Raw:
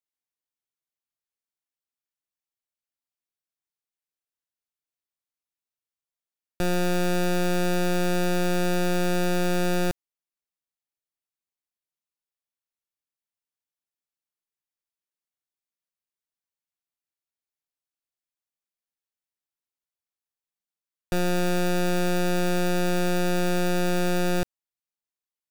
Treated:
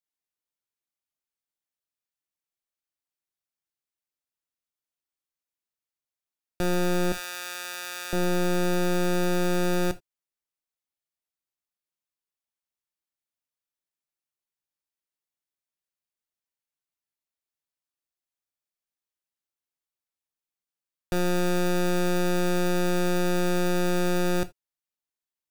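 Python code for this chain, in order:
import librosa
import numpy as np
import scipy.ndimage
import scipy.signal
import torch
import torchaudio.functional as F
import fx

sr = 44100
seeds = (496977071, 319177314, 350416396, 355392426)

y = fx.highpass(x, sr, hz=1500.0, slope=12, at=(7.12, 8.13))
y = fx.rev_gated(y, sr, seeds[0], gate_ms=100, shape='falling', drr_db=11.5)
y = y * 10.0 ** (-1.5 / 20.0)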